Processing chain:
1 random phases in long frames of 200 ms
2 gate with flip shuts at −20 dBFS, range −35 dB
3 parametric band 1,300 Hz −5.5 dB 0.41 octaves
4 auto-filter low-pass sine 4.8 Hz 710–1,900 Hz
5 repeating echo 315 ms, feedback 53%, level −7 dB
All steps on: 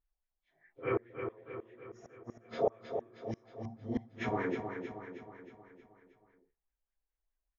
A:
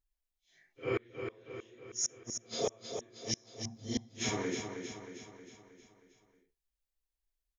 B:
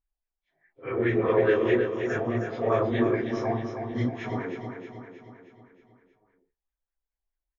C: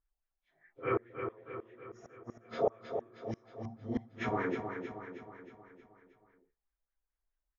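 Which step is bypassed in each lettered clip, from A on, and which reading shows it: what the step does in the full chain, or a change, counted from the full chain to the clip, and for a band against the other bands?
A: 4, 4 kHz band +17.5 dB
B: 2, change in crest factor −5.5 dB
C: 3, 1 kHz band +1.5 dB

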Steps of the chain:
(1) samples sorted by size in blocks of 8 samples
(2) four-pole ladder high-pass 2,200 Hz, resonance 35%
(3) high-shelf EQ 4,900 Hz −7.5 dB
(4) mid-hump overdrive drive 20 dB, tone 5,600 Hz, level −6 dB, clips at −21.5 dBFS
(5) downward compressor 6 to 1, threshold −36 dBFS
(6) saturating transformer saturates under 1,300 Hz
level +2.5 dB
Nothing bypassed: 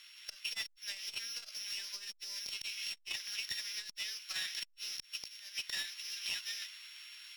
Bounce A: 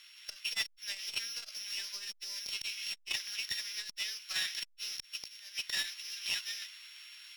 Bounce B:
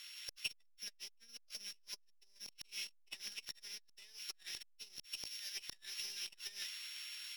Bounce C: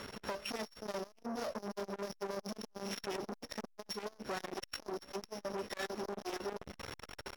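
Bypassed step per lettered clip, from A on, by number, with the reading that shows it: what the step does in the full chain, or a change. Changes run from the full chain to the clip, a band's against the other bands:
5, average gain reduction 2.0 dB
3, 500 Hz band +3.5 dB
2, 500 Hz band +33.0 dB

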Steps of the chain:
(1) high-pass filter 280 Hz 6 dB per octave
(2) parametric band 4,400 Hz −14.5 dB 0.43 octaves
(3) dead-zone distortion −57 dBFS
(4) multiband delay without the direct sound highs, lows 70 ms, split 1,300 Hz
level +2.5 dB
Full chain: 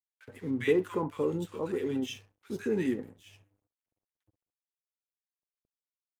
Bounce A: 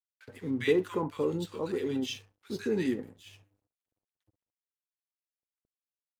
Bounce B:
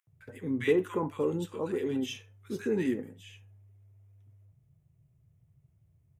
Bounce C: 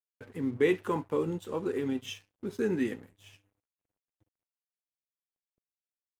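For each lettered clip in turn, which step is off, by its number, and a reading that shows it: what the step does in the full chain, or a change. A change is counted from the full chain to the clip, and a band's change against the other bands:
2, 4 kHz band +4.5 dB
3, distortion level −24 dB
4, echo-to-direct ratio −2.0 dB to none audible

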